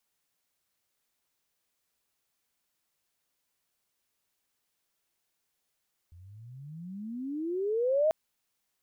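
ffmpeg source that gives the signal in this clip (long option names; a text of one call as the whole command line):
ffmpeg -f lavfi -i "aevalsrc='pow(10,(-21+28*(t/1.99-1))/20)*sin(2*PI*83.1*1.99/(35.5*log(2)/12)*(exp(35.5*log(2)/12*t/1.99)-1))':duration=1.99:sample_rate=44100" out.wav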